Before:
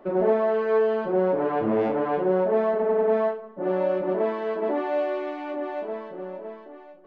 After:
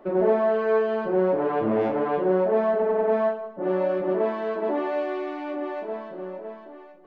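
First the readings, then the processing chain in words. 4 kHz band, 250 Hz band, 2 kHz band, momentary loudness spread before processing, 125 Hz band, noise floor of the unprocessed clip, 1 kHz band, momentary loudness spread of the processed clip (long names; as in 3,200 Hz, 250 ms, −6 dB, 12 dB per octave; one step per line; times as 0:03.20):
can't be measured, +0.5 dB, +1.0 dB, 12 LU, +0.5 dB, −46 dBFS, +0.5 dB, 12 LU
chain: reverb whose tail is shaped and stops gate 320 ms falling, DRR 10.5 dB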